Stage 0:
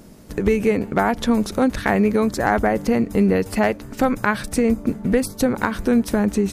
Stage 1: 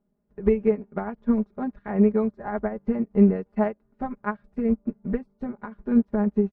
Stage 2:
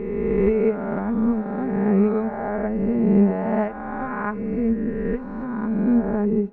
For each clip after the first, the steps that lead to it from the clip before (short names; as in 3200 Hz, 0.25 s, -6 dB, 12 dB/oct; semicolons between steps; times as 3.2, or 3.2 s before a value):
LPF 1300 Hz 12 dB/oct; comb 4.9 ms, depth 84%; upward expander 2.5:1, over -28 dBFS; gain -3 dB
spectral swells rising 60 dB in 2.17 s; reverb, pre-delay 3 ms, DRR 19 dB; gain -1.5 dB